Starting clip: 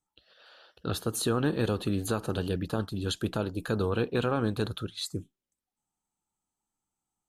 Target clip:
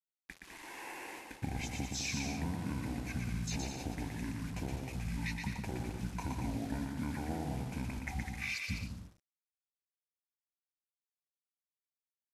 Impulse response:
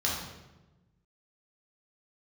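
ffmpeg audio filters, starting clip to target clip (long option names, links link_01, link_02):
-af "alimiter=limit=-22.5dB:level=0:latency=1:release=253,acompressor=threshold=-46dB:ratio=4,acrusher=bits=9:mix=0:aa=0.000001,asetrate=26063,aresample=44100,aecho=1:1:120|204|262.8|304|332.8:0.631|0.398|0.251|0.158|0.1,volume=7.5dB"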